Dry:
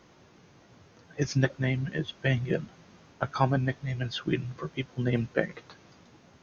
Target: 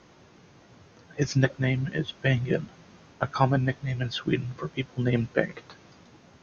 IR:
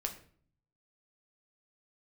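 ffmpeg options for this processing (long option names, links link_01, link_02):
-af "lowpass=9700,volume=2.5dB"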